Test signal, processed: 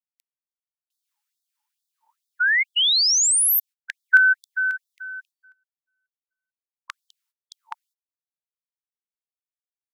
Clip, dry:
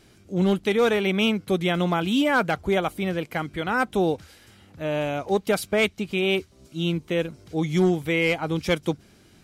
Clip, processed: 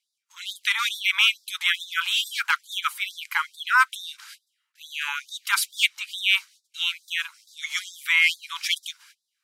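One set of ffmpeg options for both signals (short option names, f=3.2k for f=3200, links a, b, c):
-af "agate=range=-27dB:threshold=-46dB:ratio=16:detection=peak,afftfilt=real='re*gte(b*sr/1024,840*pow(3500/840,0.5+0.5*sin(2*PI*2.3*pts/sr)))':imag='im*gte(b*sr/1024,840*pow(3500/840,0.5+0.5*sin(2*PI*2.3*pts/sr)))':win_size=1024:overlap=0.75,volume=8dB"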